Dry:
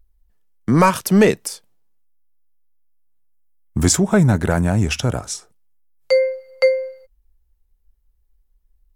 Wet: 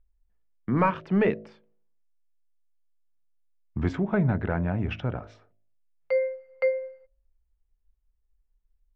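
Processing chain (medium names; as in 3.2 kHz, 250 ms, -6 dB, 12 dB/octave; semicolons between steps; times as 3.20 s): low-pass 2.7 kHz 24 dB/octave; de-hum 53.56 Hz, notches 13; trim -9 dB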